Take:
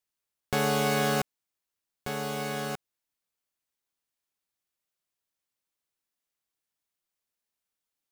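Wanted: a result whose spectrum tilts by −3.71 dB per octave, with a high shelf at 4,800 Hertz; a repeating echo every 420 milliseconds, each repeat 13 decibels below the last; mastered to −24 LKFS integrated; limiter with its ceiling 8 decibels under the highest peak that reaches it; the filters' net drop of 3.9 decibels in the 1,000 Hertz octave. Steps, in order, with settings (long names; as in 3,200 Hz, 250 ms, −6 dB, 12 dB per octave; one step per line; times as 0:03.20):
parametric band 1,000 Hz −6 dB
high-shelf EQ 4,800 Hz +4 dB
brickwall limiter −19.5 dBFS
repeating echo 420 ms, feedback 22%, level −13 dB
level +9 dB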